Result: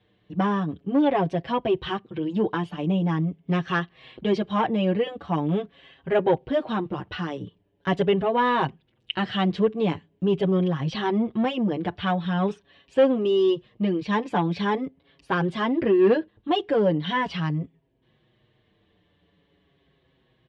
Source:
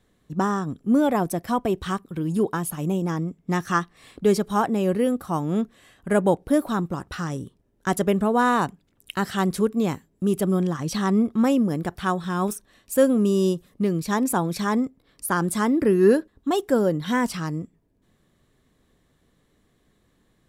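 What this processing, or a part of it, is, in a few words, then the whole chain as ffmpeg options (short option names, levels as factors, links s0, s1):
barber-pole flanger into a guitar amplifier: -filter_complex "[0:a]asplit=2[s0][s1];[s1]adelay=6.2,afreqshift=-0.43[s2];[s0][s2]amix=inputs=2:normalize=1,asoftclip=type=tanh:threshold=0.168,highpass=77,equalizer=f=240:t=q:w=4:g=-8,equalizer=f=1300:t=q:w=4:g=-7,equalizer=f=3000:t=q:w=4:g=7,lowpass=f=3700:w=0.5412,lowpass=f=3700:w=1.3066,volume=1.78"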